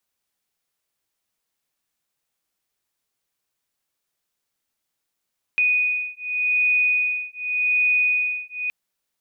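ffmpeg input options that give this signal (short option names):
-f lavfi -i "aevalsrc='0.0841*(sin(2*PI*2480*t)+sin(2*PI*2480.86*t))':d=3.12:s=44100"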